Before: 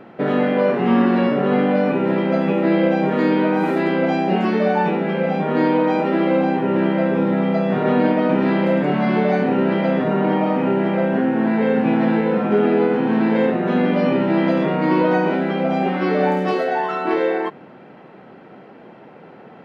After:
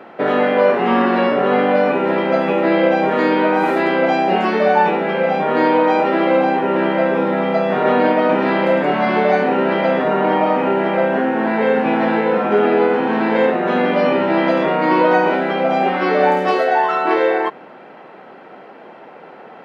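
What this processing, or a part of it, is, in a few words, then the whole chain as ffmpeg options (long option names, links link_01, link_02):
filter by subtraction: -filter_complex "[0:a]asplit=2[link_01][link_02];[link_02]lowpass=770,volume=-1[link_03];[link_01][link_03]amix=inputs=2:normalize=0,volume=4.5dB"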